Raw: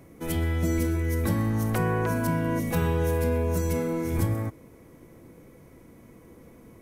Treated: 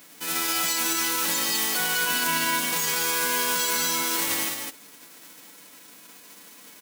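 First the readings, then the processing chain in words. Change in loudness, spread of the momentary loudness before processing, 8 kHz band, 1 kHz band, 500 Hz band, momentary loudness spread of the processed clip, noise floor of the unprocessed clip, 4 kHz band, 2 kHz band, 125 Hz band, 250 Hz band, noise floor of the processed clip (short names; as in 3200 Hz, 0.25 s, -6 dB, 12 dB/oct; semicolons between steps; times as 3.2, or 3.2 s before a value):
+4.0 dB, 3 LU, +17.5 dB, +5.0 dB, -7.0 dB, 4 LU, -52 dBFS, +20.0 dB, +10.0 dB, -21.5 dB, -9.0 dB, -49 dBFS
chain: spectral whitening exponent 0.1; HPF 73 Hz; comb 6.8 ms, depth 49%; limiter -16.5 dBFS, peak gain reduction 6 dB; resonant low shelf 160 Hz -8 dB, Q 3; echo 0.203 s -4.5 dB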